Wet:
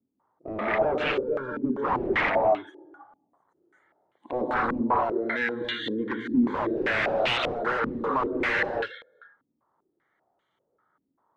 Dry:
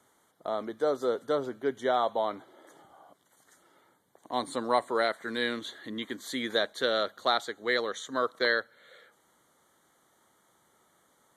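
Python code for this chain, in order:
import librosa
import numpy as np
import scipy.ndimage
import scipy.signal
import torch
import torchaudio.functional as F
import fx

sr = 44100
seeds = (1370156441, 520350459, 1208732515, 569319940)

p1 = fx.level_steps(x, sr, step_db=11)
p2 = x + F.gain(torch.from_numpy(p1), 2.5).numpy()
p3 = fx.tube_stage(p2, sr, drive_db=35.0, bias=0.35, at=(1.03, 1.62))
p4 = fx.comb_fb(p3, sr, f0_hz=260.0, decay_s=0.25, harmonics='all', damping=0.0, mix_pct=60, at=(4.71, 5.61))
p5 = fx.rev_gated(p4, sr, seeds[0], gate_ms=270, shape='rising', drr_db=1.0)
p6 = 10.0 ** (-24.5 / 20.0) * (np.abs((p5 / 10.0 ** (-24.5 / 20.0) + 3.0) % 4.0 - 2.0) - 1.0)
p7 = fx.echo_feedback(p6, sr, ms=97, feedback_pct=31, wet_db=-19.5)
p8 = fx.noise_reduce_blind(p7, sr, reduce_db=16)
p9 = fx.filter_held_lowpass(p8, sr, hz=5.1, low_hz=260.0, high_hz=2800.0)
y = F.gain(torch.from_numpy(p9), 1.0).numpy()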